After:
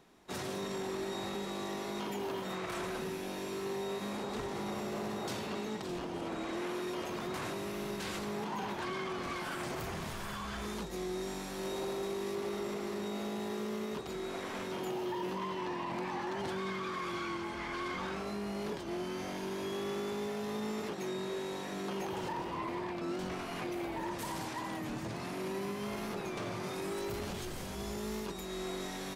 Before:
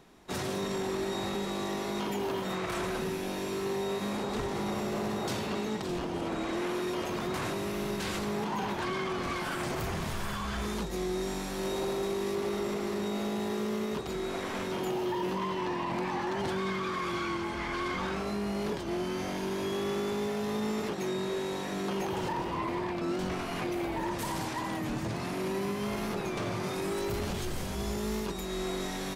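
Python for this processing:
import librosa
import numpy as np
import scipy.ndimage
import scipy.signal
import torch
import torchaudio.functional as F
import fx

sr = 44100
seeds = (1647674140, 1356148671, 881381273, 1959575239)

y = fx.low_shelf(x, sr, hz=110.0, db=-6.0)
y = y * librosa.db_to_amplitude(-4.5)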